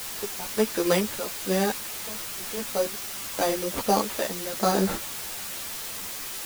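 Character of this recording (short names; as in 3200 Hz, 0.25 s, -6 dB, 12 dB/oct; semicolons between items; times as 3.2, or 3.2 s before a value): aliases and images of a low sample rate 5400 Hz; random-step tremolo, depth 95%; a quantiser's noise floor 6-bit, dither triangular; a shimmering, thickened sound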